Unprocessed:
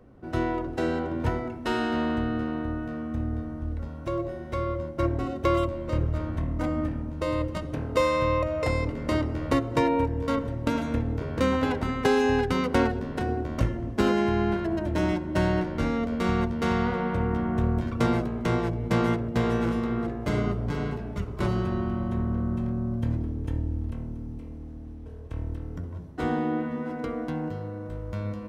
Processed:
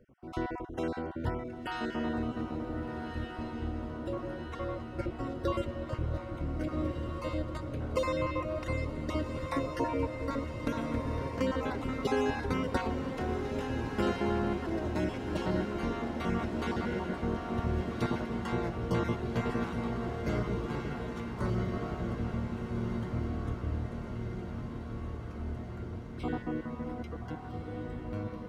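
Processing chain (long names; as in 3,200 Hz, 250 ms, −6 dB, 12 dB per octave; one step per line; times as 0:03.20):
time-frequency cells dropped at random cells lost 32%
feedback delay with all-pass diffusion 1,514 ms, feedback 67%, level −6 dB
level −6.5 dB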